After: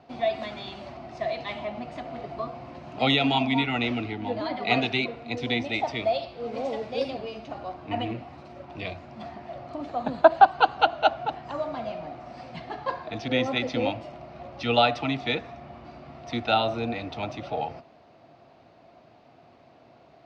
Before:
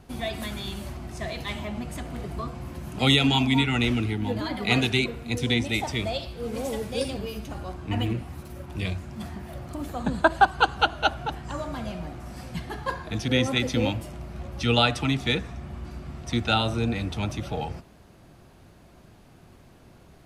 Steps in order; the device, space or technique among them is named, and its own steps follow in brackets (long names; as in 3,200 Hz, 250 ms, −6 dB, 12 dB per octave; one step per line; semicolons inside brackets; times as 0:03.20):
kitchen radio (loudspeaker in its box 180–4,500 Hz, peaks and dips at 190 Hz −9 dB, 380 Hz −4 dB, 680 Hz +9 dB, 1,600 Hz −5 dB, 3,300 Hz −4 dB)